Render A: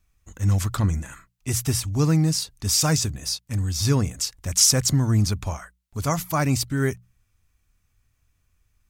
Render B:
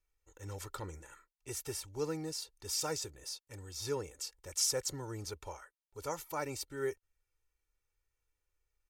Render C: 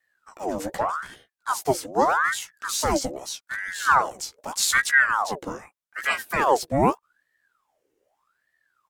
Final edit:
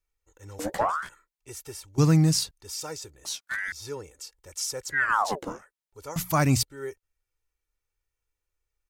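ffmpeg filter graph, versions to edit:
-filter_complex "[2:a]asplit=3[a][b][c];[0:a]asplit=2[d][e];[1:a]asplit=6[f][g][h][i][j][k];[f]atrim=end=0.592[l];[a]atrim=start=0.588:end=1.092[m];[g]atrim=start=1.088:end=1.982[n];[d]atrim=start=1.978:end=2.512[o];[h]atrim=start=2.508:end=3.252[p];[b]atrim=start=3.248:end=3.722[q];[i]atrim=start=3.718:end=5.13[r];[c]atrim=start=4.89:end=5.67[s];[j]atrim=start=5.43:end=6.162[t];[e]atrim=start=6.158:end=6.632[u];[k]atrim=start=6.628[v];[l][m]acrossfade=d=0.004:c1=hsin:c2=hsin[w];[w][n]acrossfade=d=0.004:c1=hsin:c2=hsin[x];[x][o]acrossfade=d=0.004:c1=hsin:c2=hsin[y];[y][p]acrossfade=d=0.004:c1=hsin:c2=hsin[z];[z][q]acrossfade=d=0.004:c1=hsin:c2=hsin[aa];[aa][r]acrossfade=d=0.004:c1=hsin:c2=hsin[ab];[ab][s]acrossfade=d=0.24:c1=tri:c2=tri[ac];[ac][t]acrossfade=d=0.24:c1=tri:c2=tri[ad];[ad][u]acrossfade=d=0.004:c1=hsin:c2=hsin[ae];[ae][v]acrossfade=d=0.004:c1=hsin:c2=hsin"

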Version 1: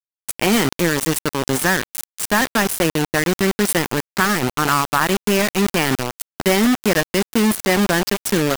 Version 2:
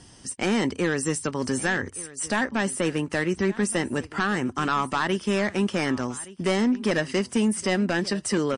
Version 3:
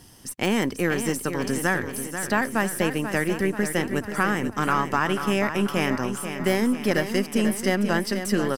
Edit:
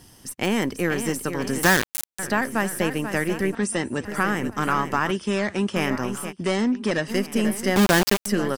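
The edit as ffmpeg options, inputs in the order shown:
-filter_complex "[0:a]asplit=2[a][b];[1:a]asplit=3[c][d][e];[2:a]asplit=6[f][g][h][i][j][k];[f]atrim=end=1.632[l];[a]atrim=start=1.628:end=2.192[m];[g]atrim=start=2.188:end=3.552[n];[c]atrim=start=3.548:end=4.052[o];[h]atrim=start=4.048:end=5.112[p];[d]atrim=start=5.108:end=5.762[q];[i]atrim=start=5.758:end=6.33[r];[e]atrim=start=6.29:end=7.11[s];[j]atrim=start=7.07:end=7.762[t];[b]atrim=start=7.758:end=8.262[u];[k]atrim=start=8.258[v];[l][m]acrossfade=d=0.004:c1=hsin:c2=hsin[w];[w][n]acrossfade=d=0.004:c1=hsin:c2=hsin[x];[x][o]acrossfade=d=0.004:c1=hsin:c2=hsin[y];[y][p]acrossfade=d=0.004:c1=hsin:c2=hsin[z];[z][q]acrossfade=d=0.004:c1=hsin:c2=hsin[aa];[aa][r]acrossfade=d=0.004:c1=hsin:c2=hsin[ab];[ab][s]acrossfade=d=0.04:c1=tri:c2=tri[ac];[ac][t]acrossfade=d=0.04:c1=tri:c2=tri[ad];[ad][u]acrossfade=d=0.004:c1=hsin:c2=hsin[ae];[ae][v]acrossfade=d=0.004:c1=hsin:c2=hsin"

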